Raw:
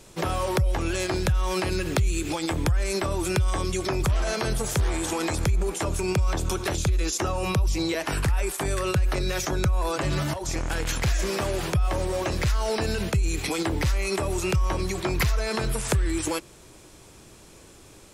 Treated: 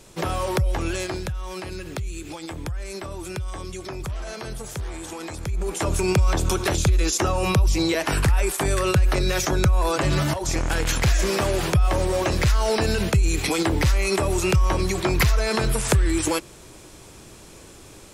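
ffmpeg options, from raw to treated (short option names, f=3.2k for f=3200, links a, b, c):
-af "volume=12.5dB,afade=t=out:st=0.88:d=0.45:silence=0.398107,afade=t=in:st=5.44:d=0.51:silence=0.266073"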